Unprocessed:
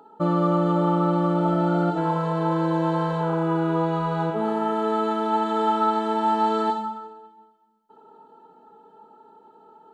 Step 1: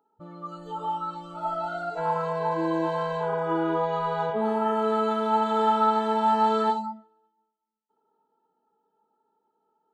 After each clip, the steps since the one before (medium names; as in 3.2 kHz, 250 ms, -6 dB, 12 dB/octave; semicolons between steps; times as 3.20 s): spectral noise reduction 22 dB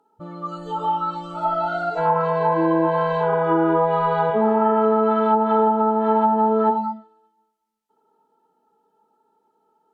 low-pass that closes with the level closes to 690 Hz, closed at -18.5 dBFS; trim +7.5 dB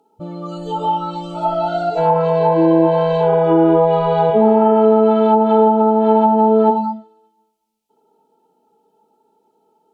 high-order bell 1.4 kHz -11 dB 1.2 oct; trim +7 dB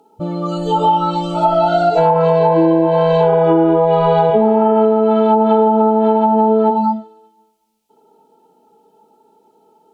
compression 10:1, threshold -16 dBFS, peak gain reduction 9.5 dB; trim +7.5 dB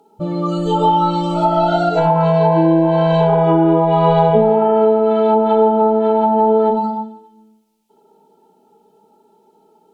reverberation RT60 0.70 s, pre-delay 5 ms, DRR 7 dB; trim -1 dB